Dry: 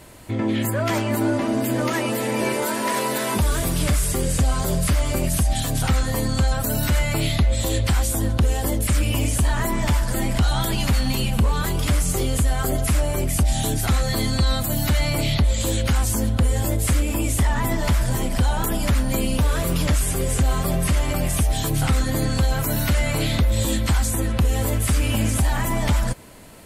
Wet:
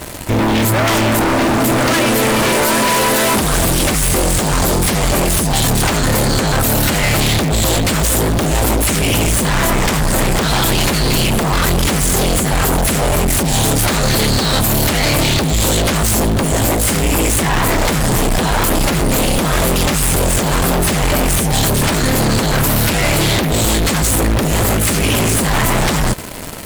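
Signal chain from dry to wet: in parallel at -5.5 dB: companded quantiser 2-bit; on the sum: sine folder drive 13 dB, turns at -6.5 dBFS; gain -5 dB

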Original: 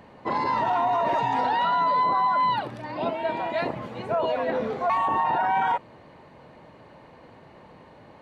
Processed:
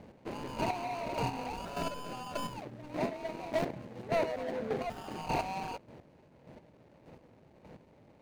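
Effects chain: median filter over 41 samples; chopper 1.7 Hz, depth 60%, duty 20%

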